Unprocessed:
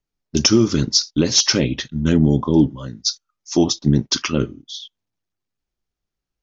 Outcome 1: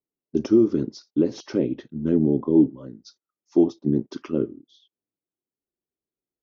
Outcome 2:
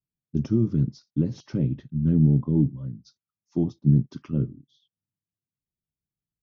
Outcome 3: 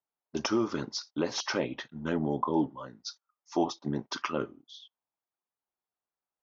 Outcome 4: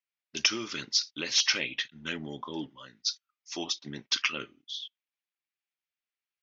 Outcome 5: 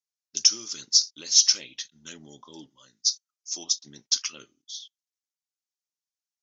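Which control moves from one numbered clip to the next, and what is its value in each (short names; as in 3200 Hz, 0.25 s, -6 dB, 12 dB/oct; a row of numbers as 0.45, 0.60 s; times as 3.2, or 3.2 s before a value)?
band-pass, frequency: 360, 140, 910, 2400, 6500 Hz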